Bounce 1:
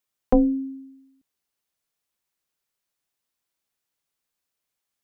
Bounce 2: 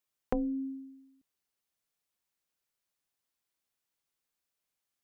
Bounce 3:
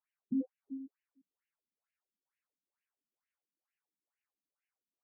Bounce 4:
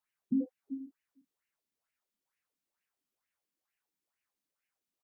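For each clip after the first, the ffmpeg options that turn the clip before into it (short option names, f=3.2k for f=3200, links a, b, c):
-af "acompressor=threshold=-25dB:ratio=6,volume=-4dB"
-af "afftfilt=real='re*between(b*sr/1024,210*pow(2200/210,0.5+0.5*sin(2*PI*2.2*pts/sr))/1.41,210*pow(2200/210,0.5+0.5*sin(2*PI*2.2*pts/sr))*1.41)':imag='im*between(b*sr/1024,210*pow(2200/210,0.5+0.5*sin(2*PI*2.2*pts/sr))/1.41,210*pow(2200/210,0.5+0.5*sin(2*PI*2.2*pts/sr))*1.41)':win_size=1024:overlap=0.75,volume=2dB"
-filter_complex "[0:a]asplit=2[a][b];[b]adelay=32,volume=-11dB[c];[a][c]amix=inputs=2:normalize=0,volume=4dB"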